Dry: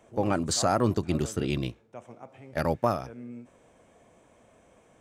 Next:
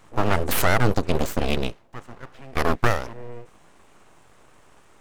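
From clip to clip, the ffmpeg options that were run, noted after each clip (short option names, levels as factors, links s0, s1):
-af "aeval=exprs='abs(val(0))':c=same,volume=2.37"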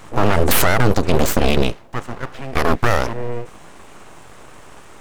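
-af "alimiter=level_in=4.73:limit=0.891:release=50:level=0:latency=1,volume=0.891"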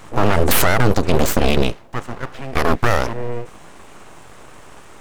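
-af anull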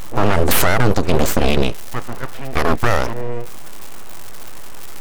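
-af "aeval=exprs='val(0)+0.5*0.126*sgn(val(0))':c=same"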